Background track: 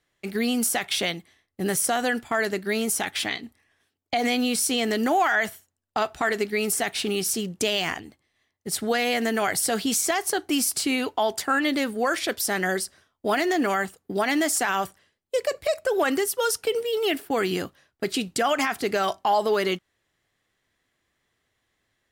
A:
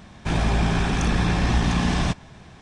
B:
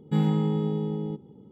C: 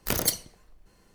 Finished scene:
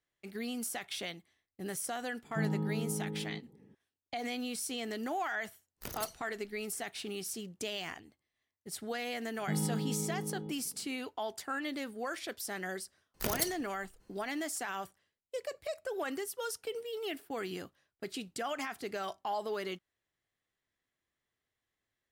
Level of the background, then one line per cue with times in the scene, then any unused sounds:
background track -14 dB
2.24 add B -10 dB + polynomial smoothing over 41 samples
5.75 add C -16 dB, fades 0.10 s
9.36 add B -10.5 dB
13.14 add C -8 dB
not used: A

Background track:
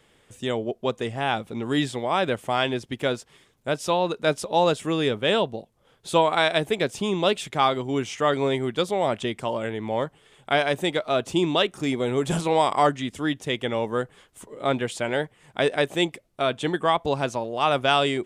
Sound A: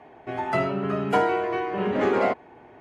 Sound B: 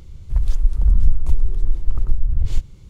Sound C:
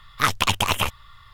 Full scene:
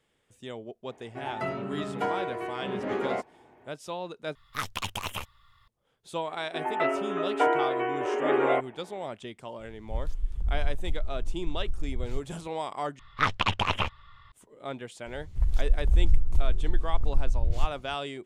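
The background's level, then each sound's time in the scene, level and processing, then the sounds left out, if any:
background track -13 dB
0.88 add A -8 dB
4.35 replace with C -12.5 dB
6.27 add A -2 dB + brick-wall FIR band-pass 250–3300 Hz
9.59 add B -13.5 dB
12.99 replace with C -4 dB + LPF 3200 Hz
15.06 add B -6.5 dB

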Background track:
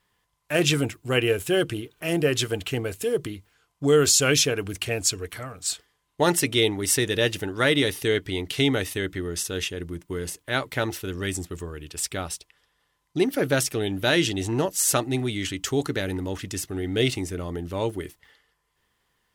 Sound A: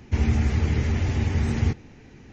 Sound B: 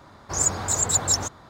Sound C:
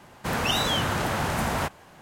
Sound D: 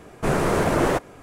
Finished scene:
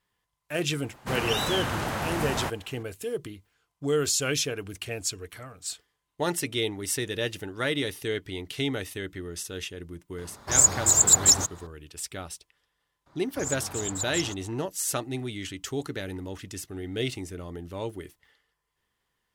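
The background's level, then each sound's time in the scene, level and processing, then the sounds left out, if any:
background track -7 dB
0.82 add C -3.5 dB
10.18 add B -2 dB + high shelf 6500 Hz +11.5 dB
13.06 add B -11 dB
not used: A, D

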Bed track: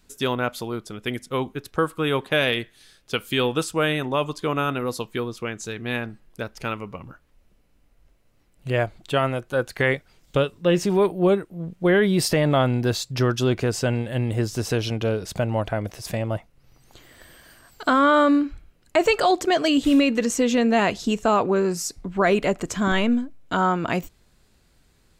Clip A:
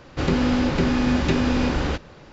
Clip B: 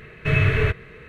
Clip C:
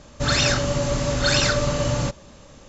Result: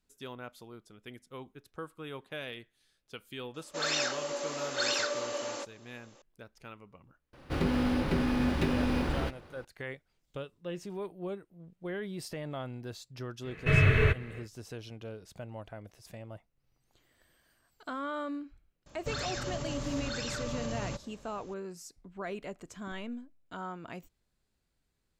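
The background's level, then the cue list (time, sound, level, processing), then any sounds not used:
bed track -19.5 dB
3.54 add C -10 dB + inverse Chebyshev high-pass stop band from 160 Hz
7.33 add A -8 dB + decimation joined by straight lines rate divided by 3×
13.41 add B -4 dB, fades 0.10 s
18.86 add C -10 dB + limiter -18 dBFS

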